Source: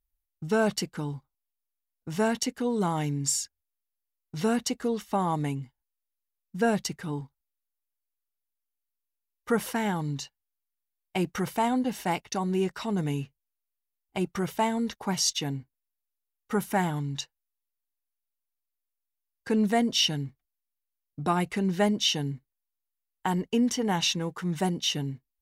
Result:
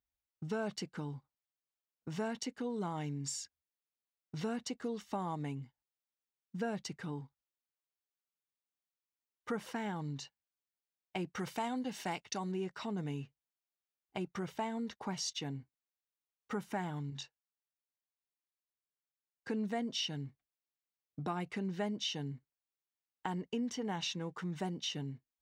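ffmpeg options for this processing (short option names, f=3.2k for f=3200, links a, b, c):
-filter_complex "[0:a]asettb=1/sr,asplit=3[a][b][c];[a]atrim=end=4.844[d];[b]atrim=start=4.84:end=5.35,asetpts=PTS-STARTPTS,afade=t=in:d=0.004:c=qsin,afade=t=out:st=0.506:d=0.004:c=qsin,bass=f=250:g=1,treble=f=4k:g=4[e];[c]atrim=start=5.346[f];[d][e]acrossfade=d=0.004:c1=hsin:c2=qsin[g];[g][f]acrossfade=d=0.004:c1=qsin:c2=hsin,asettb=1/sr,asplit=3[h][i][j];[h]atrim=end=11.394[k];[i]atrim=start=11.39:end=12.52,asetpts=PTS-STARTPTS,afade=t=in:d=0.004:c=qsin,afade=t=out:st=1.126:d=0.004:c=qsin,highshelf=f=2.2k:g=7.5[l];[j]atrim=start=12.516[m];[k][l]acrossfade=d=0.004:c1=hsin:c2=qsin[n];[n][m]acrossfade=d=0.004:c1=qsin:c2=hsin,asettb=1/sr,asplit=3[o][p][q];[o]atrim=end=17.104[r];[p]atrim=start=17.1:end=19.49,asetpts=PTS-STARTPTS,afade=t=in:d=0.004:c=qsin,afade=t=out:st=2.386:d=0.004:c=qsin,flanger=delay=19.5:depth=5.4:speed=1.6[s];[q]atrim=start=19.486[t];[r][s]acrossfade=d=0.004:c1=hsin:c2=qsin[u];[u][t]acrossfade=d=0.004:c1=qsin:c2=hsin,highpass=86,equalizer=f=12k:t=o:w=0.78:g=-15,acompressor=threshold=-39dB:ratio=2,volume=-2.5dB"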